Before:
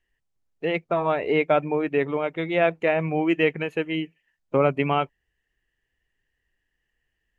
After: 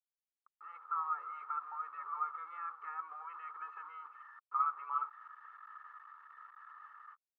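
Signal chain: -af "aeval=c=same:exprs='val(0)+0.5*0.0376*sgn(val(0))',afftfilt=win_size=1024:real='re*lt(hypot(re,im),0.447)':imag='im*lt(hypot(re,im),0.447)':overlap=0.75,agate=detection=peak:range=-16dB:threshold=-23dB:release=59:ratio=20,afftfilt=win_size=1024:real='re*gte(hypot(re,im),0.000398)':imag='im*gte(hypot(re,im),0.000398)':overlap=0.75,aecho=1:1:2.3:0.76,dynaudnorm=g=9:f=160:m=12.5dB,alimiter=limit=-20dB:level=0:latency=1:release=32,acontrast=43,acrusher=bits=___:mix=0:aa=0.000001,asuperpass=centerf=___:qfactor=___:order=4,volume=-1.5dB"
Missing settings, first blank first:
5, 1200, 5.4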